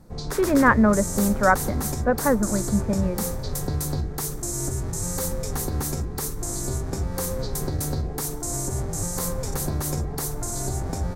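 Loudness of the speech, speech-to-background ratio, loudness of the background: -22.0 LUFS, 6.0 dB, -28.0 LUFS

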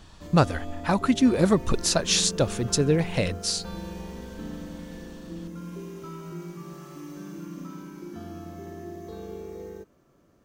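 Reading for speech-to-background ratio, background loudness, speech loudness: 14.5 dB, -38.5 LUFS, -24.0 LUFS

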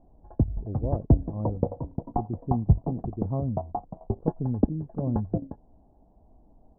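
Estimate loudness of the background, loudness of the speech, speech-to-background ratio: -30.5 LUFS, -33.5 LUFS, -3.0 dB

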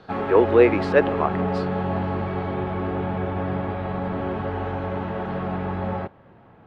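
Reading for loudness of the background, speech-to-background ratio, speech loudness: -27.0 LUFS, 7.0 dB, -20.0 LUFS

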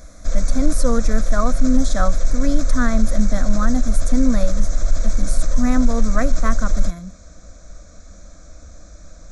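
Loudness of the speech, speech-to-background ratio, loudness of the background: -23.5 LUFS, 1.5 dB, -25.0 LUFS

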